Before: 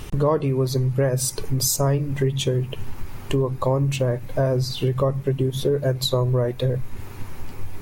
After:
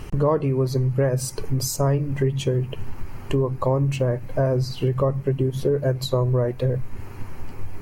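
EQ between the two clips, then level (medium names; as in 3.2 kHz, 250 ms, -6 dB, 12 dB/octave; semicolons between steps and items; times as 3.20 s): treble shelf 4 kHz -7.5 dB; band-stop 3.6 kHz, Q 5.1; 0.0 dB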